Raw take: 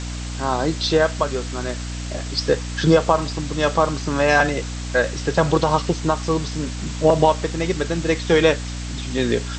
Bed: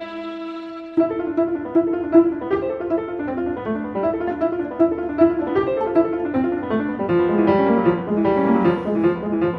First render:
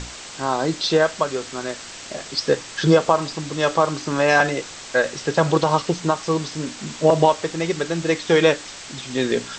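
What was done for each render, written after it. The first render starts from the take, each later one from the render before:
mains-hum notches 60/120/180/240/300 Hz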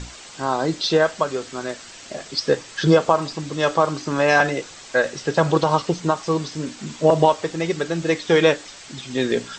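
broadband denoise 6 dB, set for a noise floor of −37 dBFS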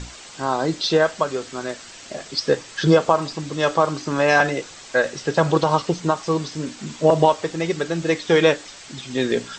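no processing that can be heard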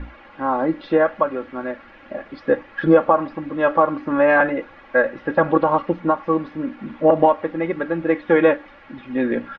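low-pass filter 2,100 Hz 24 dB per octave
comb filter 3.6 ms, depth 67%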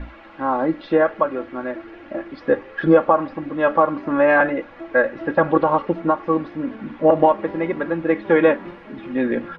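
mix in bed −19.5 dB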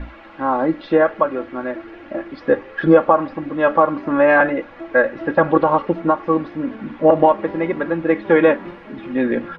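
level +2 dB
brickwall limiter −1 dBFS, peak gain reduction 1 dB

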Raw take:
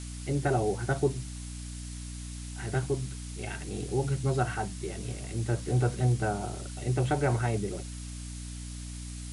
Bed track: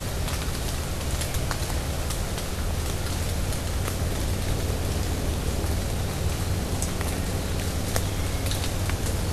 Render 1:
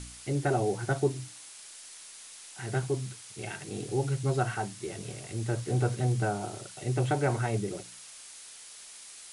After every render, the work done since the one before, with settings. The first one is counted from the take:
hum removal 60 Hz, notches 5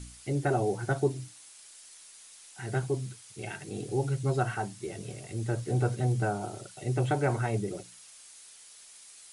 broadband denoise 6 dB, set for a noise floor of −48 dBFS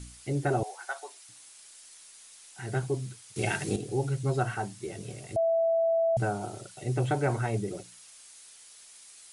0:00.63–0:01.29: high-pass filter 760 Hz 24 dB per octave
0:03.36–0:03.76: clip gain +9.5 dB
0:05.36–0:06.17: beep over 661 Hz −22 dBFS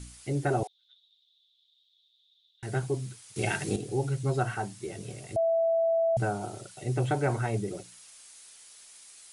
0:00.67–0:02.63: flat-topped band-pass 3,600 Hz, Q 7.4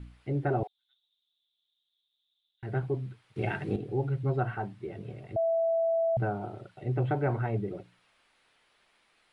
high-frequency loss of the air 480 metres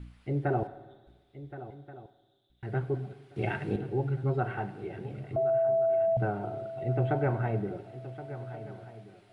feedback echo with a long and a short gap by turns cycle 1,429 ms, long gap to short 3 to 1, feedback 31%, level −14 dB
four-comb reverb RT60 1.4 s, combs from 33 ms, DRR 13.5 dB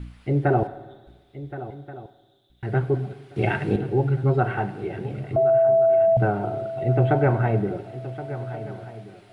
level +8.5 dB

